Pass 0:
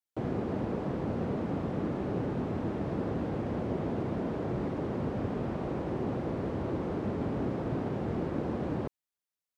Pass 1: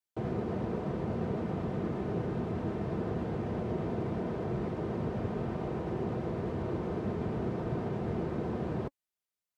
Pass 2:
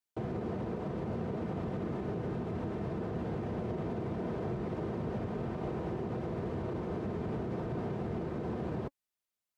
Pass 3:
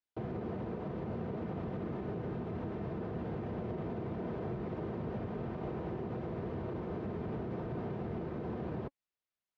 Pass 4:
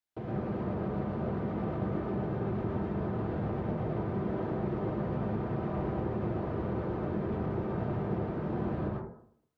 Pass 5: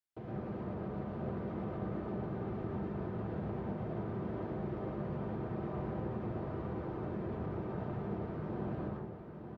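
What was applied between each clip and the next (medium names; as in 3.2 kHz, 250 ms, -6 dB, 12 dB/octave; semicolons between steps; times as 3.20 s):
vibrato 8.2 Hz 39 cents; comb of notches 280 Hz
peak limiter -28 dBFS, peak gain reduction 6 dB
low-pass 4 kHz 12 dB/octave; trim -2.5 dB
plate-style reverb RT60 0.65 s, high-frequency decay 0.3×, pre-delay 95 ms, DRR -3.5 dB
delay 910 ms -7.5 dB; trim -6.5 dB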